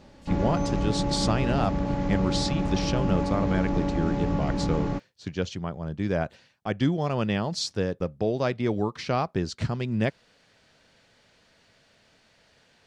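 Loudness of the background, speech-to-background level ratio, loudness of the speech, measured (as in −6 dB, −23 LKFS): −28.0 LKFS, −1.0 dB, −29.0 LKFS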